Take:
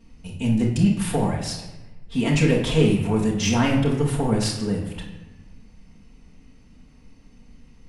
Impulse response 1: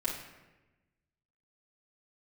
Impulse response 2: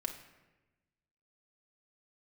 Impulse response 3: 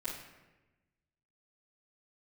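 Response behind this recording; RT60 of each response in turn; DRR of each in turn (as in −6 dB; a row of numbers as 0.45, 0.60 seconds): 1; 1.1, 1.1, 1.1 seconds; −7.0, 2.5, −15.5 decibels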